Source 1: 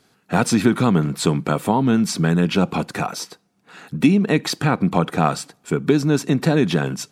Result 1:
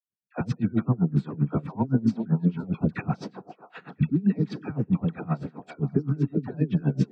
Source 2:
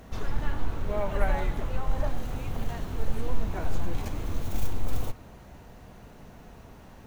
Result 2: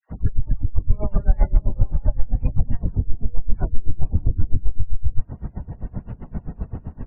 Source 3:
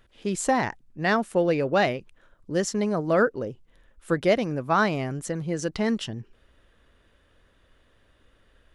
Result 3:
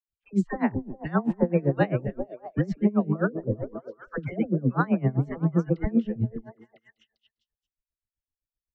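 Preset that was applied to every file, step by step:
spectral gate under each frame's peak -25 dB strong; gate -48 dBFS, range -47 dB; tone controls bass +14 dB, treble -10 dB; compressor 2:1, threshold -25 dBFS; limiter -16 dBFS; air absorption 140 m; dispersion lows, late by 85 ms, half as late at 710 Hz; on a send: delay with a stepping band-pass 0.2 s, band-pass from 310 Hz, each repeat 0.7 oct, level -5 dB; on the sum: dB-linear tremolo 7.7 Hz, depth 24 dB; match loudness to -27 LUFS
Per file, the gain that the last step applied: +4.0, +12.0, +6.0 dB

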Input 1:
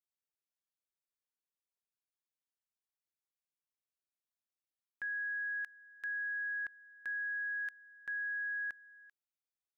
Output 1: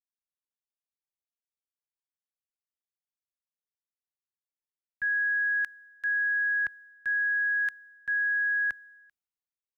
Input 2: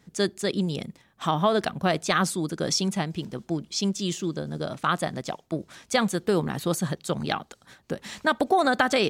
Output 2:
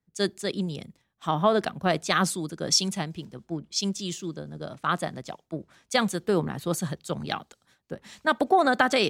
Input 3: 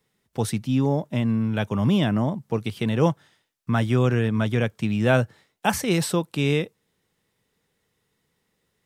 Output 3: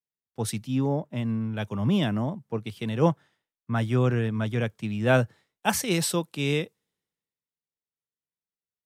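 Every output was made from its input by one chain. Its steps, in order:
three-band expander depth 70%; match loudness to -27 LUFS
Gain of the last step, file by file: +11.0, -1.5, -4.0 dB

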